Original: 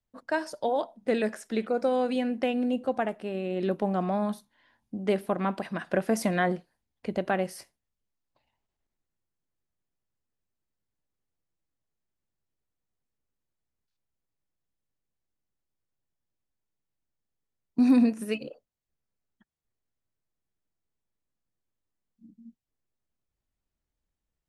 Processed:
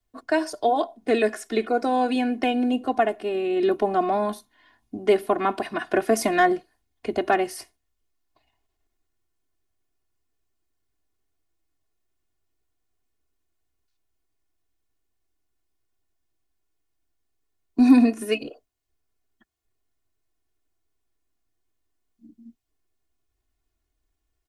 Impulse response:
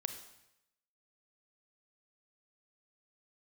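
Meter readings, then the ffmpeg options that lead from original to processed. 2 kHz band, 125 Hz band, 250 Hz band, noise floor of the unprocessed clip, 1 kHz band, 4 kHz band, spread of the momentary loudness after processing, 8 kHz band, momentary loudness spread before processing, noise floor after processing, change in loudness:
+6.0 dB, no reading, +4.5 dB, under -85 dBFS, +8.5 dB, +7.0 dB, 11 LU, +6.5 dB, 9 LU, -77 dBFS, +5.5 dB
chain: -filter_complex "[0:a]aecho=1:1:2.8:0.82,acrossover=split=250|1500|3600[s0][s1][s2][s3];[s2]aeval=exprs='clip(val(0),-1,0.0355)':c=same[s4];[s0][s1][s4][s3]amix=inputs=4:normalize=0,volume=1.68"

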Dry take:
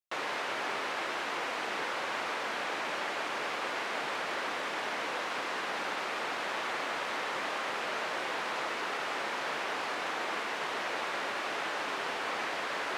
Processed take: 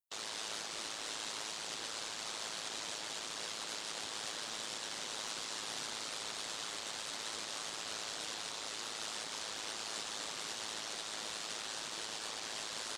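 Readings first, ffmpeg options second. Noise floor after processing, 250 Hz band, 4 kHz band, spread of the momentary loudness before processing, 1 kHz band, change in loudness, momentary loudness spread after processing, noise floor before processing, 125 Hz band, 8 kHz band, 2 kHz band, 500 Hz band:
-44 dBFS, -10.0 dB, -0.5 dB, 0 LU, -13.0 dB, -6.0 dB, 1 LU, -36 dBFS, -4.0 dB, +7.0 dB, -12.0 dB, -12.5 dB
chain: -filter_complex "[0:a]bass=f=250:g=9,treble=f=4000:g=15,alimiter=level_in=1.5:limit=0.0631:level=0:latency=1:release=87,volume=0.668,afftdn=nr=18:nf=-49,aexciter=amount=3.2:drive=3.1:freq=3200,aeval=exprs='val(0)*sin(2*PI*54*n/s)':c=same,asplit=2[s0][s1];[s1]asplit=6[s2][s3][s4][s5][s6][s7];[s2]adelay=255,afreqshift=-61,volume=0.266[s8];[s3]adelay=510,afreqshift=-122,volume=0.143[s9];[s4]adelay=765,afreqshift=-183,volume=0.0776[s10];[s5]adelay=1020,afreqshift=-244,volume=0.0417[s11];[s6]adelay=1275,afreqshift=-305,volume=0.0226[s12];[s7]adelay=1530,afreqshift=-366,volume=0.0122[s13];[s8][s9][s10][s11][s12][s13]amix=inputs=6:normalize=0[s14];[s0][s14]amix=inputs=2:normalize=0,volume=0.501"

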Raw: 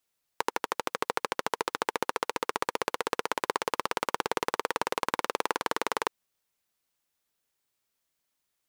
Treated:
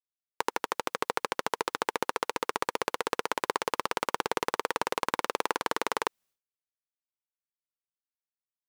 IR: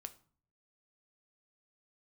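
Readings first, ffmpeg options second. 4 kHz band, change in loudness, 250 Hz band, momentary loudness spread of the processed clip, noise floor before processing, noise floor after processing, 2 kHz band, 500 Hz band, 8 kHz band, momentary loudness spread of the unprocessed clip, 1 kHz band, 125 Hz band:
0.0 dB, 0.0 dB, 0.0 dB, 2 LU, -81 dBFS, under -85 dBFS, 0.0 dB, 0.0 dB, 0.0 dB, 2 LU, 0.0 dB, 0.0 dB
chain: -af "agate=range=0.0224:threshold=0.00112:ratio=3:detection=peak"

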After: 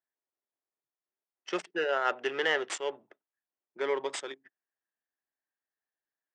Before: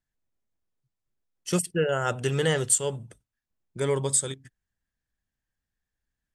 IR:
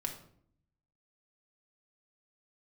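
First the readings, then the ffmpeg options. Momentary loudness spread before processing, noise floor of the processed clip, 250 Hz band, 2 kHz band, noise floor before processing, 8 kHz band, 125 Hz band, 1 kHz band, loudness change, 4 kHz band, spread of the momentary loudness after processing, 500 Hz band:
15 LU, under -85 dBFS, -10.0 dB, +1.5 dB, under -85 dBFS, -18.5 dB, under -30 dB, 0.0 dB, -6.0 dB, -2.5 dB, 13 LU, -4.5 dB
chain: -af "adynamicsmooth=sensitivity=5.5:basefreq=1600,highpass=f=370:w=0.5412,highpass=f=370:w=1.3066,equalizer=f=490:t=q:w=4:g=-7,equalizer=f=1900:t=q:w=4:g=4,equalizer=f=4300:t=q:w=4:g=-7,lowpass=f=5300:w=0.5412,lowpass=f=5300:w=1.3066"

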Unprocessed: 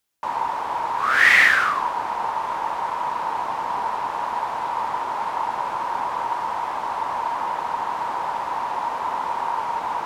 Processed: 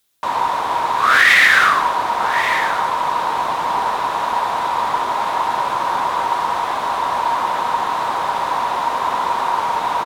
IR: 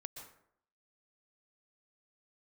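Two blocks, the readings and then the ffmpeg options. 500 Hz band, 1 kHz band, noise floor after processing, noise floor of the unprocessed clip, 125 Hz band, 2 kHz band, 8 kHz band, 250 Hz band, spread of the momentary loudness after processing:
+7.5 dB, +6.0 dB, -23 dBFS, -29 dBFS, +7.0 dB, +4.5 dB, no reading, +7.0 dB, 9 LU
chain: -filter_complex "[0:a]equalizer=f=3700:w=4.1:g=6.5,bandreject=f=870:w=12,aecho=1:1:1128:0.188,asplit=2[s0][s1];[1:a]atrim=start_sample=2205,asetrate=52920,aresample=44100,highshelf=f=5500:g=10.5[s2];[s1][s2]afir=irnorm=-1:irlink=0,volume=1.33[s3];[s0][s3]amix=inputs=2:normalize=0,alimiter=level_in=1.58:limit=0.891:release=50:level=0:latency=1,volume=0.891"

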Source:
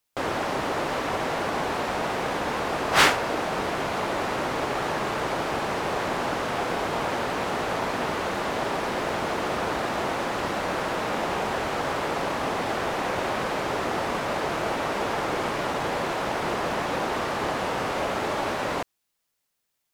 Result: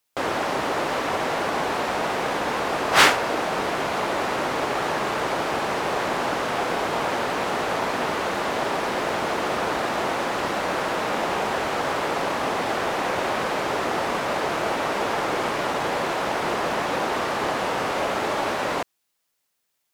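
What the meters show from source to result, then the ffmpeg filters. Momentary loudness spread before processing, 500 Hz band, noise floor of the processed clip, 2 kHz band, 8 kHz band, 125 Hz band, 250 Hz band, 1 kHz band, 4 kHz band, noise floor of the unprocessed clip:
1 LU, +2.5 dB, -75 dBFS, +3.0 dB, +3.0 dB, -1.0 dB, +1.0 dB, +3.0 dB, +3.0 dB, -78 dBFS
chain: -af "lowshelf=f=150:g=-7.5,volume=1.41"

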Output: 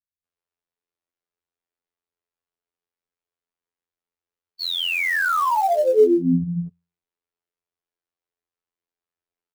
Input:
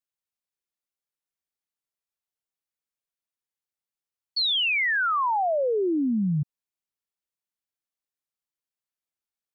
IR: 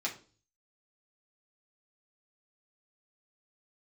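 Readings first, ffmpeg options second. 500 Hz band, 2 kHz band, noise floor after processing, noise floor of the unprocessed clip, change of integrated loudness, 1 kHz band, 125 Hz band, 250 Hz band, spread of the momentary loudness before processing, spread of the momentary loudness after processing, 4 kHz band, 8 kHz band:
+8.0 dB, +2.0 dB, under -85 dBFS, under -85 dBFS, +4.0 dB, +4.0 dB, +2.5 dB, +4.0 dB, 8 LU, 13 LU, -1.5 dB, no reading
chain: -filter_complex "[0:a]lowpass=f=1600:p=1,equalizer=f=410:w=6.4:g=8.5,bandreject=f=60:t=h:w=6,bandreject=f=120:t=h:w=6,bandreject=f=180:t=h:w=6,acrossover=split=180[s0][s1];[s1]adelay=240[s2];[s0][s2]amix=inputs=2:normalize=0,afftfilt=real='hypot(re,im)*cos(PI*b)':imag='0':win_size=2048:overlap=0.75,acrossover=split=160|670[s3][s4][s5];[s5]acrusher=bits=4:mode=log:mix=0:aa=0.000001[s6];[s3][s4][s6]amix=inputs=3:normalize=0,volume=2.82"

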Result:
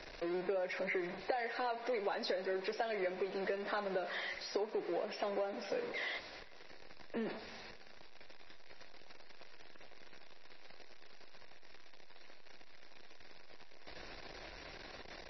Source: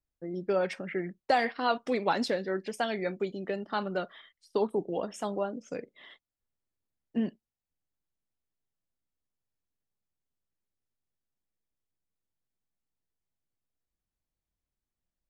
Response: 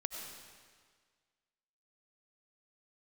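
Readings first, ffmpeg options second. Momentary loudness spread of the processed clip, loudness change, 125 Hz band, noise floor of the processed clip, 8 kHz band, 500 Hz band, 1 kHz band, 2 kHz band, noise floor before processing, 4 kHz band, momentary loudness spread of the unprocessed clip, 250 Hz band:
21 LU, -7.5 dB, -11.5 dB, -51 dBFS, -8.0 dB, -6.0 dB, -9.0 dB, -3.5 dB, under -85 dBFS, -3.5 dB, 8 LU, -9.5 dB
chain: -filter_complex "[0:a]aeval=exprs='val(0)+0.5*0.02*sgn(val(0))':c=same,equalizer=f=100:t=o:w=0.33:g=-8,equalizer=f=250:t=o:w=0.33:g=-5,equalizer=f=1250:t=o:w=0.33:g=-9,equalizer=f=3150:t=o:w=0.33:g=-9,asplit=2[s0][s1];[s1]aeval=exprs='clip(val(0),-1,0.0211)':c=same,volume=0.282[s2];[s0][s2]amix=inputs=2:normalize=0,acrossover=split=330 4800:gain=0.158 1 0.0891[s3][s4][s5];[s3][s4][s5]amix=inputs=3:normalize=0,bandreject=f=860:w=12,asplit=2[s6][s7];[1:a]atrim=start_sample=2205,adelay=48[s8];[s7][s8]afir=irnorm=-1:irlink=0,volume=0.168[s9];[s6][s9]amix=inputs=2:normalize=0,acompressor=threshold=0.0224:ratio=12" -ar 22050 -c:a libmp3lame -b:a 24k

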